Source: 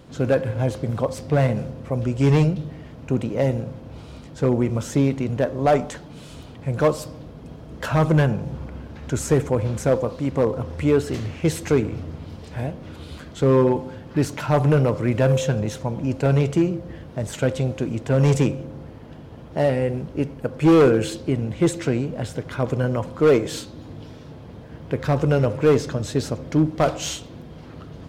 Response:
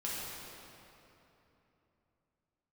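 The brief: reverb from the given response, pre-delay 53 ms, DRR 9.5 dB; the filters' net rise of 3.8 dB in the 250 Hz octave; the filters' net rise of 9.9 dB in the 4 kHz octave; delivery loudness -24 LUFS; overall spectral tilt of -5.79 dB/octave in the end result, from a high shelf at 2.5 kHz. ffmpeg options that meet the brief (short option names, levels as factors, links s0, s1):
-filter_complex "[0:a]equalizer=f=250:t=o:g=5,highshelf=f=2500:g=7,equalizer=f=4000:t=o:g=6.5,asplit=2[s0][s1];[1:a]atrim=start_sample=2205,adelay=53[s2];[s1][s2]afir=irnorm=-1:irlink=0,volume=0.211[s3];[s0][s3]amix=inputs=2:normalize=0,volume=0.596"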